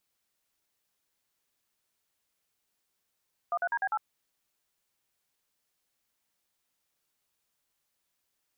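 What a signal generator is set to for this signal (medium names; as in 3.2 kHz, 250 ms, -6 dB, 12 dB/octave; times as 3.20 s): DTMF "13DB8", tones 54 ms, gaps 46 ms, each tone -29 dBFS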